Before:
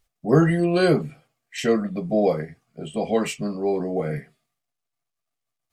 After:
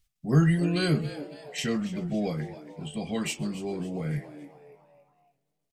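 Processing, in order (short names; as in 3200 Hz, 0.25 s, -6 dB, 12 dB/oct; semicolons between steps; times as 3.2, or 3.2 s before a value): EQ curve 150 Hz 0 dB, 540 Hz -15 dB, 3000 Hz -1 dB; frequency-shifting echo 0.279 s, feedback 43%, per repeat +140 Hz, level -15 dB; warbling echo 0.133 s, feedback 67%, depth 162 cents, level -24 dB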